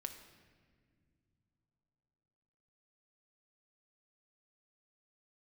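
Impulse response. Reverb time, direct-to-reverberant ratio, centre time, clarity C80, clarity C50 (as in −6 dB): non-exponential decay, 5.5 dB, 21 ms, 10.5 dB, 9.0 dB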